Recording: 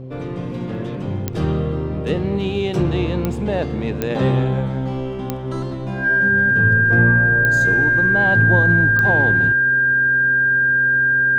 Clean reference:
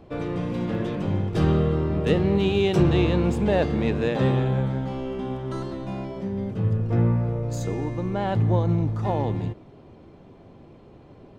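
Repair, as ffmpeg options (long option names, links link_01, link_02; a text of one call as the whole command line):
ffmpeg -i in.wav -af "adeclick=threshold=4,bandreject=frequency=129.4:width_type=h:width=4,bandreject=frequency=258.8:width_type=h:width=4,bandreject=frequency=388.2:width_type=h:width=4,bandreject=frequency=517.6:width_type=h:width=4,bandreject=frequency=1600:width=30,asetnsamples=nb_out_samples=441:pad=0,asendcmd='4.1 volume volume -4dB',volume=0dB" out.wav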